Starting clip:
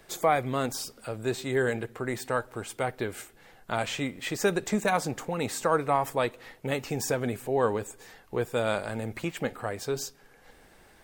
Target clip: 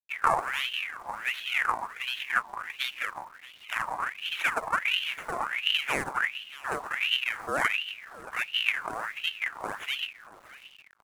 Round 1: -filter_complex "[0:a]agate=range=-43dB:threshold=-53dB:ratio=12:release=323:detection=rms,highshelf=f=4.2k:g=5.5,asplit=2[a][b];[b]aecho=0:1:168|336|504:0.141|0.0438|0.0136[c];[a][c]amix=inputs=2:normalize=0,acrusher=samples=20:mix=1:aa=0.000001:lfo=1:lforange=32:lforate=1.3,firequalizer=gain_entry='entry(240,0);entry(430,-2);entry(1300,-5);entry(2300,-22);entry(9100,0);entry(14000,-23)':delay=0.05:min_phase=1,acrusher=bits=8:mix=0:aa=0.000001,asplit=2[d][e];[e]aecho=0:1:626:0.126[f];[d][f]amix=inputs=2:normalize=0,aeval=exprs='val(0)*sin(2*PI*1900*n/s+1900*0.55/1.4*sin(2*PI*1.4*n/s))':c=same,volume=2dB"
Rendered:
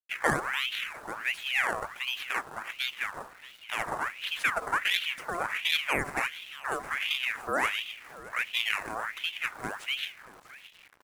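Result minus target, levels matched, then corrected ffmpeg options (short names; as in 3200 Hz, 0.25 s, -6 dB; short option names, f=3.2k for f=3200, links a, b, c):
decimation with a swept rate: distortion -9 dB
-filter_complex "[0:a]agate=range=-43dB:threshold=-53dB:ratio=12:release=323:detection=rms,highshelf=f=4.2k:g=5.5,asplit=2[a][b];[b]aecho=0:1:168|336|504:0.141|0.0438|0.0136[c];[a][c]amix=inputs=2:normalize=0,acrusher=samples=63:mix=1:aa=0.000001:lfo=1:lforange=101:lforate=1.3,firequalizer=gain_entry='entry(240,0);entry(430,-2);entry(1300,-5);entry(2300,-22);entry(9100,0);entry(14000,-23)':delay=0.05:min_phase=1,acrusher=bits=8:mix=0:aa=0.000001,asplit=2[d][e];[e]aecho=0:1:626:0.126[f];[d][f]amix=inputs=2:normalize=0,aeval=exprs='val(0)*sin(2*PI*1900*n/s+1900*0.55/1.4*sin(2*PI*1.4*n/s))':c=same,volume=2dB"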